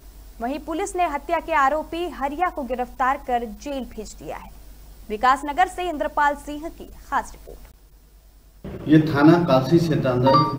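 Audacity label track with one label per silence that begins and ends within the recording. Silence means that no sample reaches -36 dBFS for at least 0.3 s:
7.710000	8.650000	silence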